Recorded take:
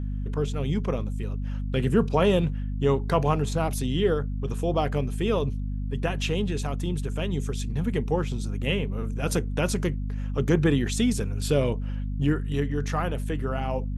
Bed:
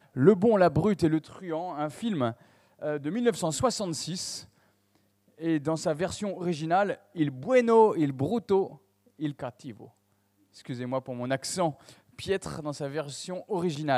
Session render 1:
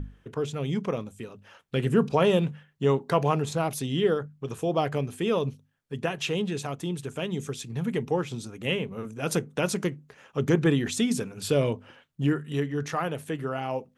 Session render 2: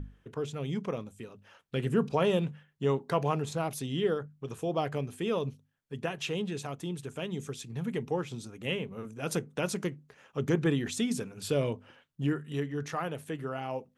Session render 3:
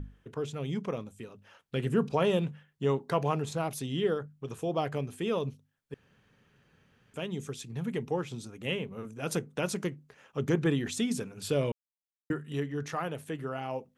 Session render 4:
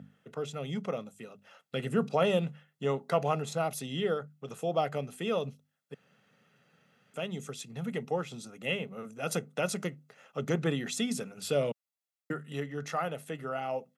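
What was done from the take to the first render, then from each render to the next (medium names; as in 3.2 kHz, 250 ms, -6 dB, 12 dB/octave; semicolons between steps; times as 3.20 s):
hum notches 50/100/150/200/250 Hz
trim -5 dB
5.94–7.14 s: room tone; 11.72–12.30 s: mute
high-pass 160 Hz 24 dB/octave; comb 1.5 ms, depth 50%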